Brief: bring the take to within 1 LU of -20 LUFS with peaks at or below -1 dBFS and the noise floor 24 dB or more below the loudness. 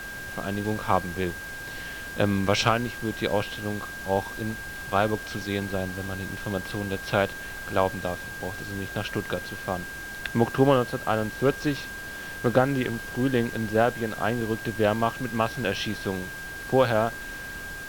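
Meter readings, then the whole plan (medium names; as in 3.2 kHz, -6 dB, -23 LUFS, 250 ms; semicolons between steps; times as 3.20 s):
steady tone 1.6 kHz; tone level -36 dBFS; noise floor -37 dBFS; noise floor target -52 dBFS; loudness -27.5 LUFS; peak level -5.5 dBFS; loudness target -20.0 LUFS
-> band-stop 1.6 kHz, Q 30; noise print and reduce 15 dB; trim +7.5 dB; peak limiter -1 dBFS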